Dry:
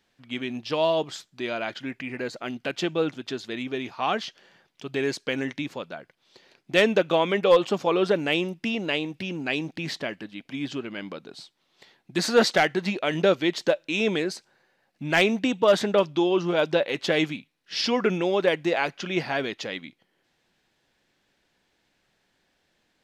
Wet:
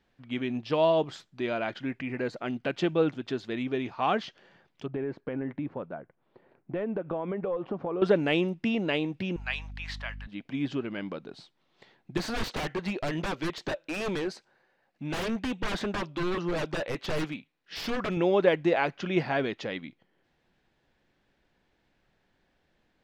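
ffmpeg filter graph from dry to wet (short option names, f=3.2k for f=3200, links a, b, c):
-filter_complex "[0:a]asettb=1/sr,asplit=3[a][b][c];[a]atrim=end=4.864[d];[b]atrim=start=4.86:end=8.02,asetpts=PTS-STARTPTS,afade=t=in:d=0.004:c=qsin,afade=t=out:st=3.156:d=0.004:c=qsin,lowpass=1.3k,acompressor=threshold=-29dB:ratio=5:attack=3.2:release=140:knee=1:detection=peak[e];[c]atrim=start=8.016[f];[d][e]acrossfade=d=0.004:c1=hsin:c2=qsin[g];[g][f]acrossfade=d=0.004:c1=qsin:c2=hsin,asettb=1/sr,asplit=3[h][i][j];[h]atrim=end=9.364[k];[i]atrim=start=9.36:end=10.27,asetpts=PTS-STARTPTS,afade=t=in:d=0.004:c=qsin,afade=t=out:st=0.906:d=0.004:c=qsin,highpass=f=910:w=0.5412,highpass=f=910:w=1.3066,aeval=exprs='val(0)+0.00562*(sin(2*PI*50*n/s)+sin(2*PI*2*50*n/s)/2+sin(2*PI*3*50*n/s)/3+sin(2*PI*4*50*n/s)/4+sin(2*PI*5*50*n/s)/5)':c=same[l];[j]atrim=start=10.266[m];[k][l]acrossfade=d=0.004:c1=hsin:c2=qsin[n];[n][m]acrossfade=d=0.004:c1=qsin:c2=hsin,asettb=1/sr,asplit=3[o][p][q];[o]atrim=end=12.174[r];[p]atrim=start=12.17:end=18.17,asetpts=PTS-STARTPTS,afade=t=in:d=0.004:c=qsin,afade=t=out:st=5.996:d=0.004:c=qsin,lowshelf=f=250:g=-8.5,aeval=exprs='0.0596*(abs(mod(val(0)/0.0596+3,4)-2)-1)':c=same[s];[q]atrim=start=18.166[t];[r][s]acrossfade=d=0.004:c1=hsin:c2=qsin[u];[u][t]acrossfade=d=0.004:c1=qsin:c2=hsin,lowpass=f=1.9k:p=1,lowshelf=f=93:g=8.5"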